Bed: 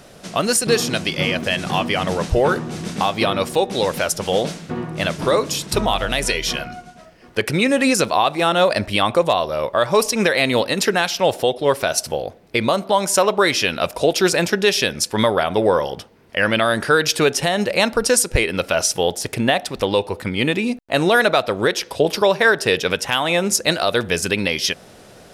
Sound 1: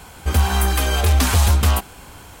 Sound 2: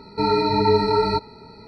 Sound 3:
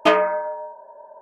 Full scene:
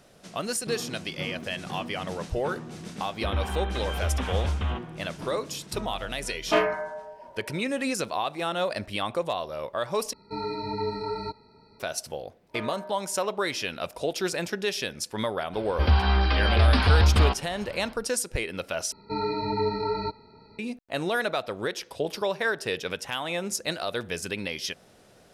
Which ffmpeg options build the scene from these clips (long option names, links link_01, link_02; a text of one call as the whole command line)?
ffmpeg -i bed.wav -i cue0.wav -i cue1.wav -i cue2.wav -filter_complex "[1:a]asplit=2[link_01][link_02];[3:a]asplit=2[link_03][link_04];[2:a]asplit=2[link_05][link_06];[0:a]volume=-12dB[link_07];[link_01]aresample=8000,aresample=44100[link_08];[link_03]asplit=2[link_09][link_10];[link_10]adelay=42,volume=-6dB[link_11];[link_09][link_11]amix=inputs=2:normalize=0[link_12];[link_05]aresample=32000,aresample=44100[link_13];[link_04]alimiter=limit=-11.5dB:level=0:latency=1:release=34[link_14];[link_02]aresample=11025,aresample=44100[link_15];[link_06]lowpass=frequency=4800:width=0.5412,lowpass=frequency=4800:width=1.3066[link_16];[link_07]asplit=3[link_17][link_18][link_19];[link_17]atrim=end=10.134[link_20];[link_13]atrim=end=1.67,asetpts=PTS-STARTPTS,volume=-12.5dB[link_21];[link_18]atrim=start=11.796:end=18.924[link_22];[link_16]atrim=end=1.67,asetpts=PTS-STARTPTS,volume=-9dB[link_23];[link_19]atrim=start=20.586[link_24];[link_08]atrim=end=2.4,asetpts=PTS-STARTPTS,volume=-12dB,afade=type=in:duration=0.004:curve=hsin,afade=type=out:start_time=2.396:duration=0.004:curve=hsin,adelay=2980[link_25];[link_12]atrim=end=1.21,asetpts=PTS-STARTPTS,volume=-5.5dB,afade=type=in:duration=0.1,afade=type=out:start_time=1.11:duration=0.1,adelay=6460[link_26];[link_14]atrim=end=1.21,asetpts=PTS-STARTPTS,volume=-17.5dB,afade=type=in:duration=0.004:curve=hsin,afade=type=out:start_time=1.206:duration=0.004:curve=hsin,adelay=12490[link_27];[link_15]atrim=end=2.4,asetpts=PTS-STARTPTS,volume=-3.5dB,afade=type=in:duration=0.004:curve=hsin,afade=type=out:start_time=2.396:duration=0.004:curve=hsin,adelay=15530[link_28];[link_20][link_21]acrossfade=duration=0.004:curve1=hsin:curve2=hsin[link_29];[link_29][link_22]acrossfade=duration=0.004:curve1=hsin:curve2=hsin[link_30];[link_30][link_23]acrossfade=duration=0.004:curve1=hsin:curve2=hsin[link_31];[link_31][link_24]acrossfade=duration=0.004:curve1=hsin:curve2=hsin[link_32];[link_32][link_25][link_26][link_27][link_28]amix=inputs=5:normalize=0" out.wav